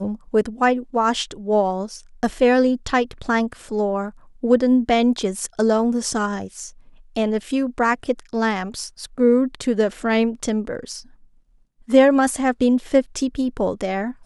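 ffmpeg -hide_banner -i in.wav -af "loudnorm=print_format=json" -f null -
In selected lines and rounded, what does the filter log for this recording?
"input_i" : "-20.2",
"input_tp" : "-2.0",
"input_lra" : "2.2",
"input_thresh" : "-30.8",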